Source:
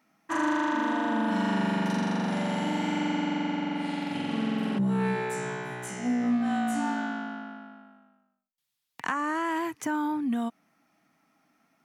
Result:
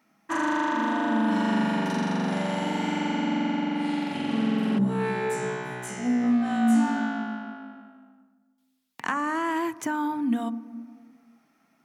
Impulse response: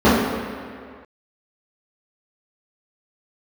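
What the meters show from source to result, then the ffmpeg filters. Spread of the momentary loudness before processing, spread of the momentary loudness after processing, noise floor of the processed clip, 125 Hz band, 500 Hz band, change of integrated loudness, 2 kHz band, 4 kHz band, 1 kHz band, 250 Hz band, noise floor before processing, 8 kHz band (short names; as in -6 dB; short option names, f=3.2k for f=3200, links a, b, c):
8 LU, 10 LU, -68 dBFS, +1.0 dB, +2.5 dB, +2.5 dB, +1.5 dB, +1.5 dB, +2.0 dB, +3.0 dB, -81 dBFS, +1.5 dB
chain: -filter_complex "[0:a]asplit=2[a][b];[1:a]atrim=start_sample=2205[c];[b][c]afir=irnorm=-1:irlink=0,volume=-43dB[d];[a][d]amix=inputs=2:normalize=0,volume=1.5dB"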